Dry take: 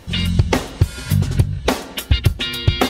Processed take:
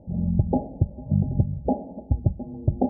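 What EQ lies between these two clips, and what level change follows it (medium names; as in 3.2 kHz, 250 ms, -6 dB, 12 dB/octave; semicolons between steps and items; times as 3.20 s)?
rippled Chebyshev low-pass 850 Hz, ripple 9 dB; 0.0 dB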